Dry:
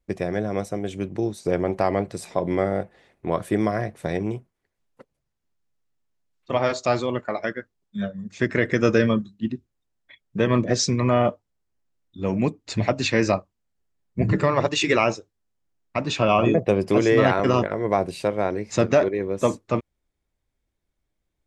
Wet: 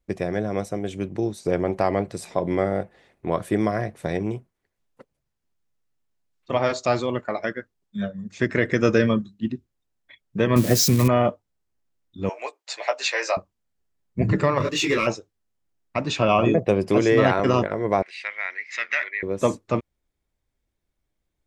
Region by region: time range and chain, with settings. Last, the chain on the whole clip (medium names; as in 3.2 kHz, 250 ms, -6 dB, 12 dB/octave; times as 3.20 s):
10.56–11.08 s: zero-crossing glitches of -17 dBFS + bass shelf 250 Hz +6.5 dB
12.29–13.37 s: inverse Chebyshev high-pass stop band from 220 Hz, stop band 50 dB + doubling 15 ms -6 dB
14.58–15.07 s: Butterworth band-stop 760 Hz, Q 1.7 + waveshaping leveller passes 1 + detune thickener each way 28 cents
18.02–19.23 s: resonant high-pass 2 kHz, resonance Q 7.4 + distance through air 140 m
whole clip: none